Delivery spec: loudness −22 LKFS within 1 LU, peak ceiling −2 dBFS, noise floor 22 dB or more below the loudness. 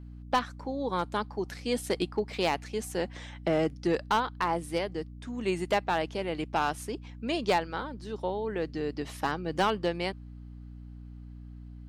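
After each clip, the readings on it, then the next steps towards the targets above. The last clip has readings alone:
share of clipped samples 0.3%; peaks flattened at −18.5 dBFS; mains hum 60 Hz; hum harmonics up to 300 Hz; level of the hum −42 dBFS; integrated loudness −31.5 LKFS; sample peak −18.5 dBFS; target loudness −22.0 LKFS
→ clipped peaks rebuilt −18.5 dBFS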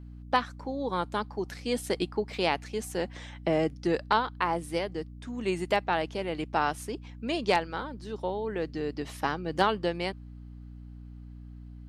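share of clipped samples 0.0%; mains hum 60 Hz; hum harmonics up to 300 Hz; level of the hum −42 dBFS
→ hum removal 60 Hz, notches 5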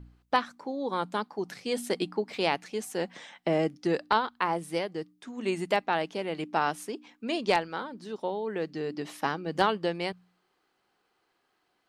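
mains hum none found; integrated loudness −31.0 LKFS; sample peak −9.5 dBFS; target loudness −22.0 LKFS
→ level +9 dB
brickwall limiter −2 dBFS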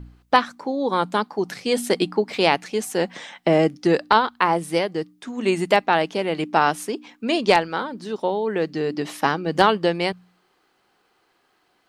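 integrated loudness −22.0 LKFS; sample peak −2.0 dBFS; background noise floor −66 dBFS

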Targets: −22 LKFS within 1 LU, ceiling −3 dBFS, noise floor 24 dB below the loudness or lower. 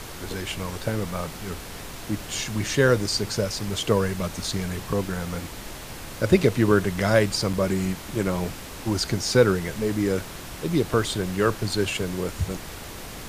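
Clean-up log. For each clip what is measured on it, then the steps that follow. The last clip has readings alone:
number of dropouts 1; longest dropout 4.8 ms; background noise floor −38 dBFS; target noise floor −49 dBFS; integrated loudness −25.0 LKFS; sample peak −4.5 dBFS; target loudness −22.0 LKFS
→ repair the gap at 0:07.53, 4.8 ms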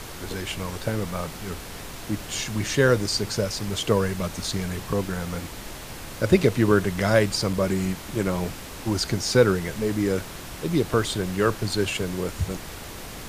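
number of dropouts 0; background noise floor −38 dBFS; target noise floor −49 dBFS
→ noise reduction from a noise print 11 dB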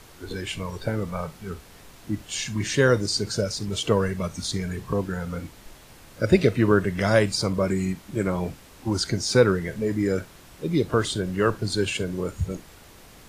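background noise floor −49 dBFS; integrated loudness −25.0 LKFS; sample peak −4.5 dBFS; target loudness −22.0 LKFS
→ level +3 dB
brickwall limiter −3 dBFS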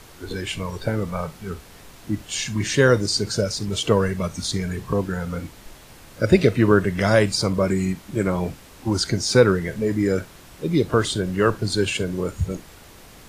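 integrated loudness −22.0 LKFS; sample peak −3.0 dBFS; background noise floor −46 dBFS

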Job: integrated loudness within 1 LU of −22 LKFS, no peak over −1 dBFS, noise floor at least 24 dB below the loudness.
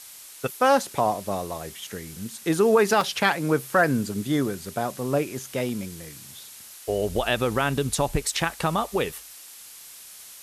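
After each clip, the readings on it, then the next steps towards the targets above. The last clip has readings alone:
number of dropouts 2; longest dropout 1.5 ms; background noise floor −45 dBFS; target noise floor −49 dBFS; integrated loudness −25.0 LKFS; sample peak −8.5 dBFS; target loudness −22.0 LKFS
→ repair the gap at 0:03.01/0:05.69, 1.5 ms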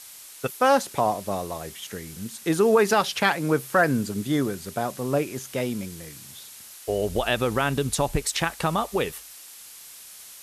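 number of dropouts 0; background noise floor −45 dBFS; target noise floor −49 dBFS
→ noise reduction from a noise print 6 dB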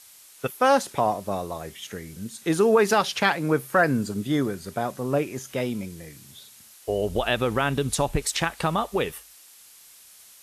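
background noise floor −51 dBFS; integrated loudness −25.0 LKFS; sample peak −9.0 dBFS; target loudness −22.0 LKFS
→ level +3 dB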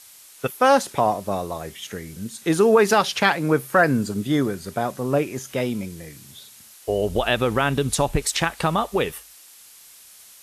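integrated loudness −22.0 LKFS; sample peak −6.0 dBFS; background noise floor −48 dBFS

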